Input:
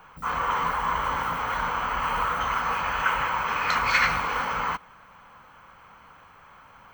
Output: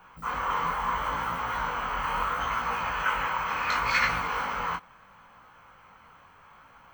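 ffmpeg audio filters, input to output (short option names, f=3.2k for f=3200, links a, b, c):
-af "flanger=delay=16.5:depth=7:speed=0.73"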